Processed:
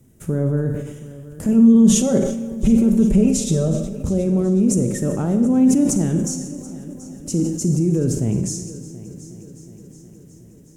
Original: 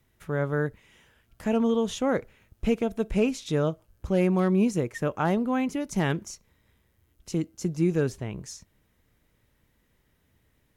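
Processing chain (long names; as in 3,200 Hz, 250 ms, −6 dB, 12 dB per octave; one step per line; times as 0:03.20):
graphic EQ with 10 bands 125 Hz +8 dB, 250 Hz +10 dB, 500 Hz +4 dB, 1,000 Hz −6 dB, 2,000 Hz −8 dB, 4,000 Hz −8 dB, 8,000 Hz +10 dB
brickwall limiter −20.5 dBFS, peak gain reduction 16 dB
0:01.48–0:03.68: comb filter 5.2 ms, depth 90%
echo machine with several playback heads 365 ms, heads first and second, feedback 61%, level −20 dB
four-comb reverb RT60 0.87 s, combs from 31 ms, DRR 6 dB
level that may fall only so fast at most 58 dB per second
level +8 dB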